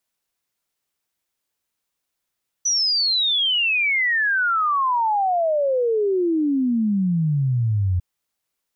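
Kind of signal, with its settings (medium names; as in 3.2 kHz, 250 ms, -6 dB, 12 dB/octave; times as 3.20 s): log sweep 6 kHz -> 87 Hz 5.35 s -17 dBFS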